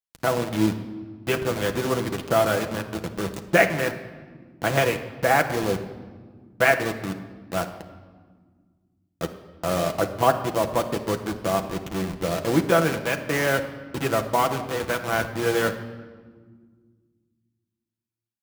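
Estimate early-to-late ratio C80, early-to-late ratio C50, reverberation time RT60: 12.0 dB, 10.5 dB, 1.6 s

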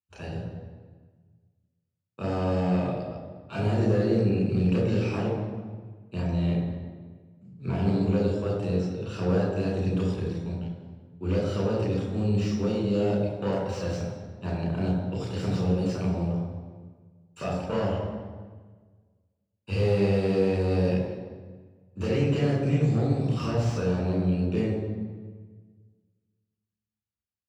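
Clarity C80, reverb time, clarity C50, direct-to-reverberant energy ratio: 4.0 dB, 1.5 s, 1.5 dB, −4.0 dB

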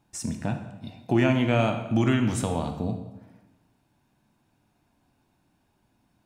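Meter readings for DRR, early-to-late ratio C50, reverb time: 5.0 dB, 8.0 dB, 1.0 s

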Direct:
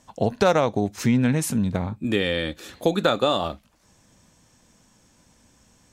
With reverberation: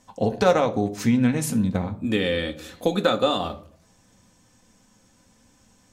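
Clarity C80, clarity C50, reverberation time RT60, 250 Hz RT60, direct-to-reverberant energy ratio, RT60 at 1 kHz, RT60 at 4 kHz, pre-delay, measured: 19.5 dB, 16.0 dB, 0.55 s, 0.70 s, 5.5 dB, 0.50 s, 0.35 s, 4 ms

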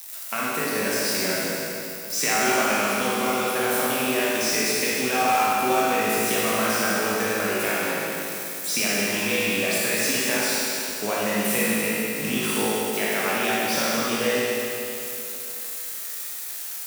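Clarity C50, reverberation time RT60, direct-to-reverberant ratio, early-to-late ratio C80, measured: −5.0 dB, 2.9 s, −8.0 dB, −2.5 dB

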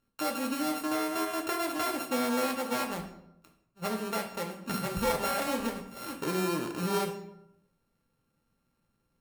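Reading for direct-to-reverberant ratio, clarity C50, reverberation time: 2.5 dB, 9.0 dB, 0.80 s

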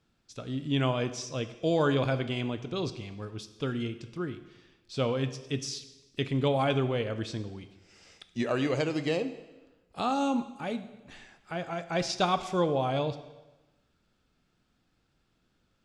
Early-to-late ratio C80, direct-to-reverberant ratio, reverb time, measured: 14.5 dB, 10.0 dB, 1.1 s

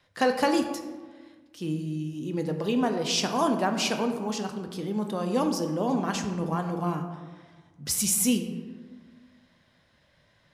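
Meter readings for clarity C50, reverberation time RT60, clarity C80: 7.5 dB, 1.4 s, 9.0 dB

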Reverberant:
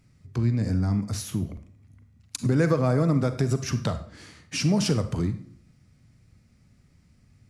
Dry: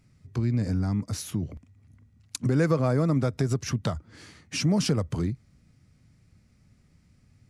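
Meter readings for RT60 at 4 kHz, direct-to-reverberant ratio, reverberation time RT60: 0.45 s, 9.5 dB, 0.55 s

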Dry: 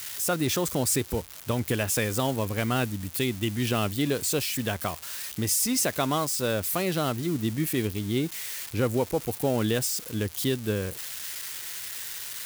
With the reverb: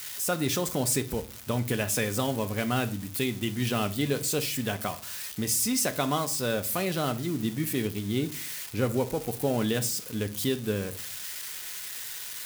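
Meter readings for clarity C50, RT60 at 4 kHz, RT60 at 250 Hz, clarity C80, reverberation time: 17.0 dB, 0.35 s, 0.65 s, 22.0 dB, 0.40 s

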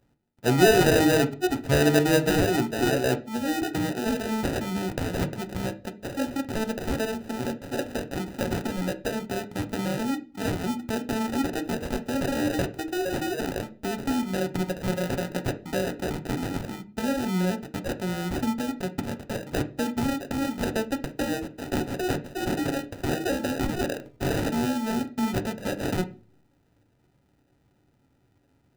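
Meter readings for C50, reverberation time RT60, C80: 16.5 dB, 0.40 s, 21.5 dB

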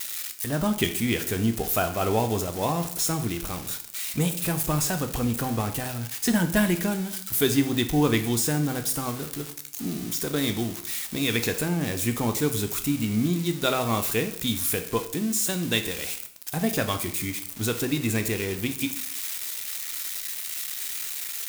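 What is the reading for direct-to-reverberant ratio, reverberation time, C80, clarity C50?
7.0 dB, 0.60 s, 15.0 dB, 11.5 dB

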